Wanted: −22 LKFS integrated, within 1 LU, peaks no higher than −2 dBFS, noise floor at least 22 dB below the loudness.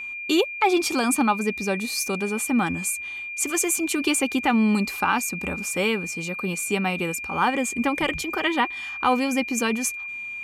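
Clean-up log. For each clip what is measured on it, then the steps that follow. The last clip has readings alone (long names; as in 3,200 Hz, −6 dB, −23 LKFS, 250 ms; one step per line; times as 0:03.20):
interfering tone 2,400 Hz; level of the tone −31 dBFS; integrated loudness −23.5 LKFS; sample peak −8.5 dBFS; target loudness −22.0 LKFS
→ notch filter 2,400 Hz, Q 30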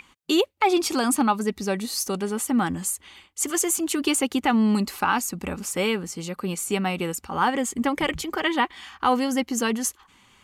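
interfering tone none found; integrated loudness −24.5 LKFS; sample peak −9.0 dBFS; target loudness −22.0 LKFS
→ level +2.5 dB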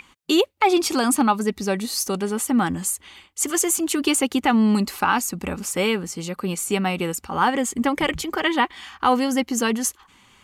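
integrated loudness −22.0 LKFS; sample peak −6.5 dBFS; background noise floor −57 dBFS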